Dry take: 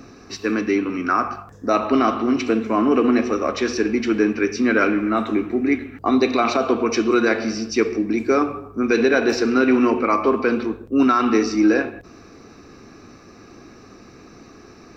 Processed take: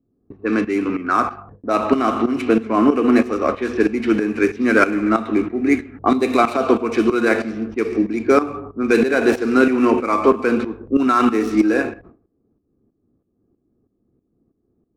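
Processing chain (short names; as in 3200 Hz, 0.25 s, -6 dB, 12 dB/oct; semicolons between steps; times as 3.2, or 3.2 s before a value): median filter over 9 samples; gate with hold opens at -33 dBFS; low-pass opened by the level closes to 370 Hz, open at -15 dBFS; tremolo saw up 3.1 Hz, depth 75%; gain +5.5 dB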